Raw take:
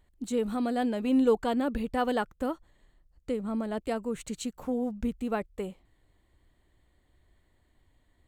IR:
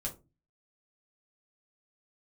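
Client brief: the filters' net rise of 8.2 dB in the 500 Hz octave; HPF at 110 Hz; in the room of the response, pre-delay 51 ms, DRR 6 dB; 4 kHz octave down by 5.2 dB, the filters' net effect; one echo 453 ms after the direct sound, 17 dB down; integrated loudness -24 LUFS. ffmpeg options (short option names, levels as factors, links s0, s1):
-filter_complex "[0:a]highpass=110,equalizer=f=500:t=o:g=9,equalizer=f=4000:t=o:g=-7.5,aecho=1:1:453:0.141,asplit=2[s0][s1];[1:a]atrim=start_sample=2205,adelay=51[s2];[s1][s2]afir=irnorm=-1:irlink=0,volume=0.473[s3];[s0][s3]amix=inputs=2:normalize=0,volume=1.06"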